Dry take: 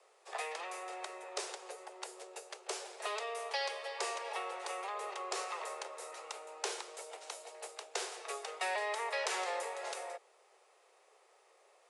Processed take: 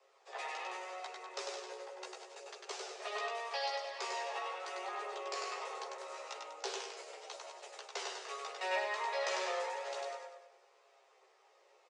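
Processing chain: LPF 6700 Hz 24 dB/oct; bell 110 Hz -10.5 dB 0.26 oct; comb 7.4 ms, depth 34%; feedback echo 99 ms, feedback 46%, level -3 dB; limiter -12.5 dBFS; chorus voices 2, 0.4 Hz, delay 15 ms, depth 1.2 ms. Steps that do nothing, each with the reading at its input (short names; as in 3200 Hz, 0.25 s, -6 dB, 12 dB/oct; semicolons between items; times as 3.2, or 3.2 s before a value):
bell 110 Hz: input band starts at 300 Hz; limiter -12.5 dBFS: input peak -18.5 dBFS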